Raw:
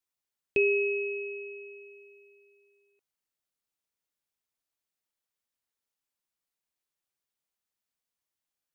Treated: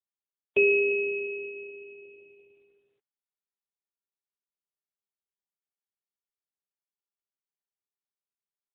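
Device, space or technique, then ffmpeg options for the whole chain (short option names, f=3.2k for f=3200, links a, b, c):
mobile call with aggressive noise cancelling: -af "highpass=130,afftdn=nr=17:nf=-55,volume=4.5dB" -ar 8000 -c:a libopencore_amrnb -b:a 7950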